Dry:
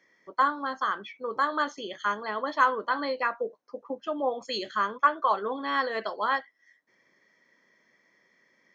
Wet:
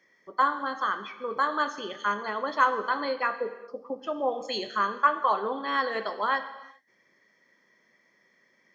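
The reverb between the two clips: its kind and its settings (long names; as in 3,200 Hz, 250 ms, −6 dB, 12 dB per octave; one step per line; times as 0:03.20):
reverb whose tail is shaped and stops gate 430 ms falling, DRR 10 dB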